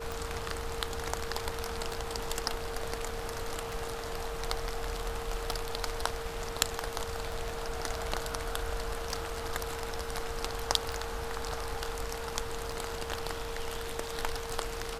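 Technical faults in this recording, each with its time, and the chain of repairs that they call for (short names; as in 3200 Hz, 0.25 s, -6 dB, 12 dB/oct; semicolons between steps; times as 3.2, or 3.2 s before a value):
tick 33 1/3 rpm
tone 460 Hz -40 dBFS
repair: de-click; notch 460 Hz, Q 30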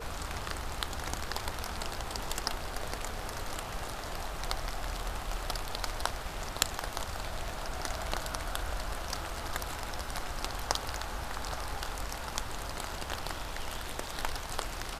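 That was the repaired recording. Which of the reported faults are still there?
none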